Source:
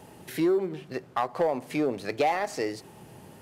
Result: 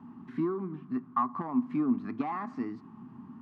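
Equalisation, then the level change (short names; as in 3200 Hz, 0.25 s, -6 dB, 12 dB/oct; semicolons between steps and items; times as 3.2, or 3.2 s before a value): double band-pass 520 Hz, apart 2.2 oct; air absorption 69 m; low shelf 380 Hz +11 dB; +5.0 dB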